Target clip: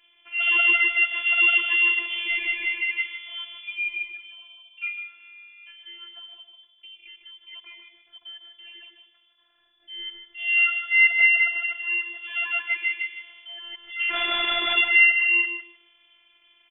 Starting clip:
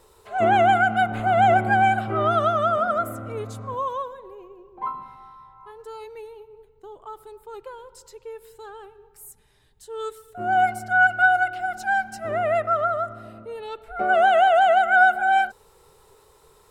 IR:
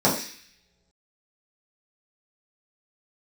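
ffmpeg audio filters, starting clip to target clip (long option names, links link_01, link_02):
-filter_complex "[0:a]tiltshelf=frequency=970:gain=-4.5,asplit=3[link_01][link_02][link_03];[link_01]afade=type=out:start_time=14.09:duration=0.02[link_04];[link_02]aeval=exprs='(mod(6.68*val(0)+1,2)-1)/6.68':channel_layout=same,afade=type=in:start_time=14.09:duration=0.02,afade=type=out:start_time=14.76:duration=0.02[link_05];[link_03]afade=type=in:start_time=14.76:duration=0.02[link_06];[link_04][link_05][link_06]amix=inputs=3:normalize=0,lowpass=frequency=3000:width_type=q:width=0.5098,lowpass=frequency=3000:width_type=q:width=0.6013,lowpass=frequency=3000:width_type=q:width=0.9,lowpass=frequency=3000:width_type=q:width=2.563,afreqshift=-3500,asplit=2[link_07][link_08];[link_08]adelay=152,lowpass=frequency=1300:poles=1,volume=-4dB,asplit=2[link_09][link_10];[link_10]adelay=152,lowpass=frequency=1300:poles=1,volume=0.24,asplit=2[link_11][link_12];[link_12]adelay=152,lowpass=frequency=1300:poles=1,volume=0.24[link_13];[link_07][link_09][link_11][link_13]amix=inputs=4:normalize=0,afftfilt=real='hypot(re,im)*cos(PI*b)':imag='0':win_size=512:overlap=0.75"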